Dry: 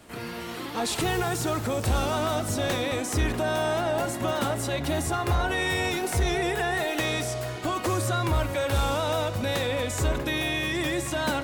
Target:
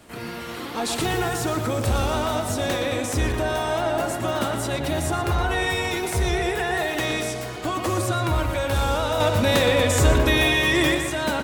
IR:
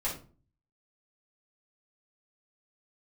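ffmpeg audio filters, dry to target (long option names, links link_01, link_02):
-filter_complex "[0:a]asettb=1/sr,asplit=3[link_01][link_02][link_03];[link_01]atrim=end=9.204[link_04];[link_02]atrim=start=9.2:end=10.95,asetpts=PTS-STARTPTS,afade=type=in:duration=0.004:curve=qsin,afade=type=out:start_time=1.746:duration=0.004:curve=qsin,acontrast=56[link_05];[link_03]atrim=start=10.946[link_06];[link_04][link_05]acrossfade=duration=0.004:curve1=hsin:curve2=qsin[link_07];[link_07][link_06]acrossfade=duration=0.004:curve1=qsin:curve2=hsin,asplit=2[link_08][link_09];[link_09]adelay=118,lowpass=frequency=4000:poles=1,volume=-6dB,asplit=2[link_10][link_11];[link_11]adelay=118,lowpass=frequency=4000:poles=1,volume=0.52,asplit=2[link_12][link_13];[link_13]adelay=118,lowpass=frequency=4000:poles=1,volume=0.52,asplit=2[link_14][link_15];[link_15]adelay=118,lowpass=frequency=4000:poles=1,volume=0.52,asplit=2[link_16][link_17];[link_17]adelay=118,lowpass=frequency=4000:poles=1,volume=0.52,asplit=2[link_18][link_19];[link_19]adelay=118,lowpass=frequency=4000:poles=1,volume=0.52[link_20];[link_10][link_12][link_14][link_16][link_18][link_20]amix=inputs=6:normalize=0[link_21];[link_08][link_21]amix=inputs=2:normalize=0,volume=1.5dB"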